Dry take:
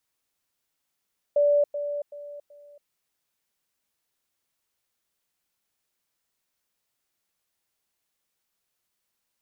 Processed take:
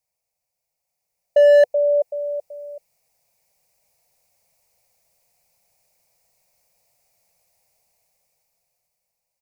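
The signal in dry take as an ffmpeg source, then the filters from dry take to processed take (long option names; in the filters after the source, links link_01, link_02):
-f lavfi -i "aevalsrc='pow(10,(-17-10*floor(t/0.38))/20)*sin(2*PI*581*t)*clip(min(mod(t,0.38),0.28-mod(t,0.38))/0.005,0,1)':duration=1.52:sample_rate=44100"
-af "firequalizer=gain_entry='entry(170,0);entry(250,-14);entry(350,-13);entry(500,3);entry(720,6);entry(1100,-9);entry(1500,-15);entry(2300,0);entry(3200,-15);entry(4700,-2)':delay=0.05:min_phase=1,dynaudnorm=framelen=250:gausssize=13:maxgain=15dB,asoftclip=type=hard:threshold=-9dB"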